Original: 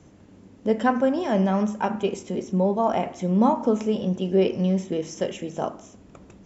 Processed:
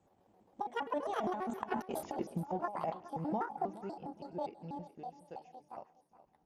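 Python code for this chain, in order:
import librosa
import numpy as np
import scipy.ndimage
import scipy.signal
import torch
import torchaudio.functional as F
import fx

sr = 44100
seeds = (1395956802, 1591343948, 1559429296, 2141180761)

p1 = fx.pitch_trill(x, sr, semitones=9.0, every_ms=74)
p2 = fx.doppler_pass(p1, sr, speed_mps=34, closest_m=4.0, pass_at_s=1.91)
p3 = fx.peak_eq(p2, sr, hz=790.0, db=13.0, octaves=0.57)
p4 = fx.transient(p3, sr, attack_db=-1, sustain_db=-7)
p5 = fx.over_compress(p4, sr, threshold_db=-35.0, ratio=-0.5)
p6 = p5 + fx.echo_feedback(p5, sr, ms=418, feedback_pct=27, wet_db=-16, dry=0)
y = p6 * 10.0 ** (-1.5 / 20.0)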